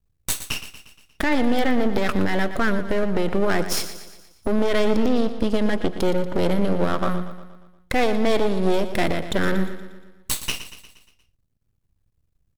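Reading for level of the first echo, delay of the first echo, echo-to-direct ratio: -12.0 dB, 118 ms, -10.5 dB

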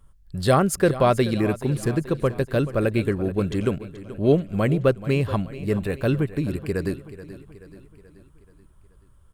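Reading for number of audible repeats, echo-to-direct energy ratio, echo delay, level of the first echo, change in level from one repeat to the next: 4, -13.5 dB, 430 ms, -15.0 dB, -5.5 dB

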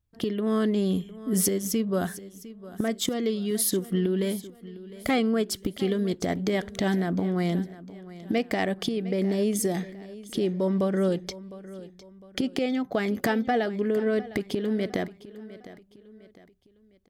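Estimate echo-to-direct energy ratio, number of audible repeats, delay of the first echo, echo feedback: -16.5 dB, 3, 706 ms, 40%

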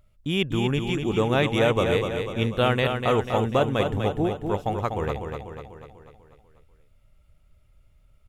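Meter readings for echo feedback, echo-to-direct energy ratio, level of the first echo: 54%, -4.5 dB, -6.0 dB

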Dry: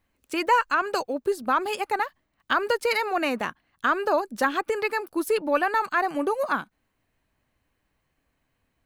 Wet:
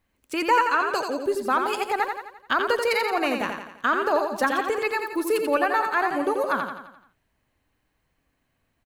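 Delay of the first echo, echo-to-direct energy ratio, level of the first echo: 86 ms, -4.5 dB, -5.5 dB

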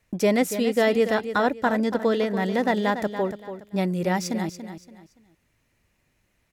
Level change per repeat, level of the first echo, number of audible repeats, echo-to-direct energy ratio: -10.5 dB, -10.5 dB, 3, -10.0 dB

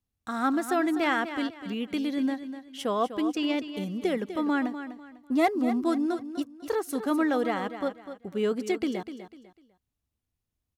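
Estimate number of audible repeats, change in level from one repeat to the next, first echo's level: 3, -10.5 dB, -11.0 dB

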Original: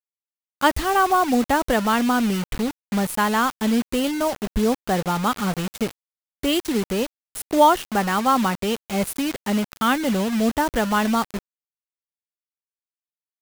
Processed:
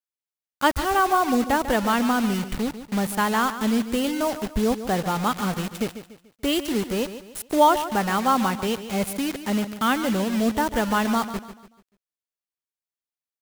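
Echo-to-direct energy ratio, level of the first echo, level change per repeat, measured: -11.5 dB, -12.0 dB, -8.5 dB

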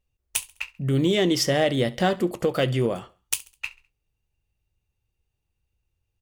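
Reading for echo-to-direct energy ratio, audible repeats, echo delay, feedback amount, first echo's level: -20.5 dB, 2, 68 ms, 39%, -21.0 dB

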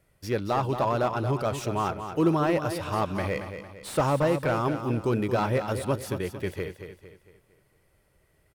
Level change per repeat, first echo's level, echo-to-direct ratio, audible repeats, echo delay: -7.5 dB, -9.0 dB, -8.0 dB, 4, 227 ms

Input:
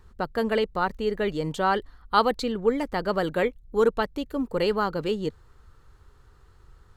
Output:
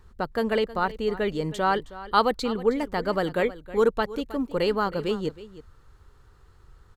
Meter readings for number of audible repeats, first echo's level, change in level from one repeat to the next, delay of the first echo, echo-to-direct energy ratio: 1, -16.5 dB, no regular repeats, 317 ms, -16.5 dB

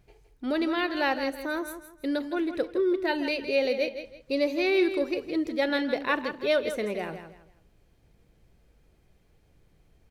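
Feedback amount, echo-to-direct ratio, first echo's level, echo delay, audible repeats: 28%, -9.5 dB, -10.0 dB, 163 ms, 3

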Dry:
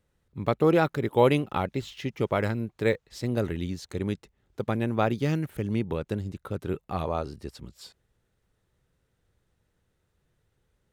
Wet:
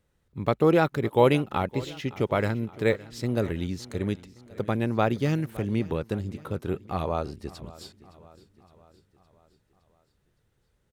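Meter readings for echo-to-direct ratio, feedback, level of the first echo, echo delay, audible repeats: -18.0 dB, 56%, -19.5 dB, 564 ms, 4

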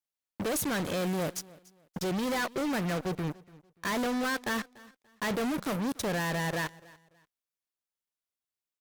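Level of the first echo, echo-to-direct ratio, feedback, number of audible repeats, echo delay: -22.0 dB, -21.5 dB, 28%, 2, 290 ms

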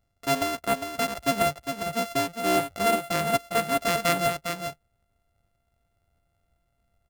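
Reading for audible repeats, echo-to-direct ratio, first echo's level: 1, -7.0 dB, -7.0 dB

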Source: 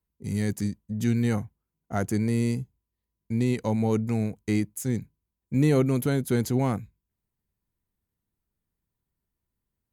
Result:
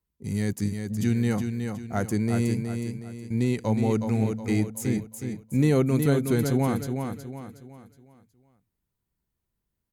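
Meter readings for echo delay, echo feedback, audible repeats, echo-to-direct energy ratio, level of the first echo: 367 ms, 39%, 4, -5.5 dB, -6.0 dB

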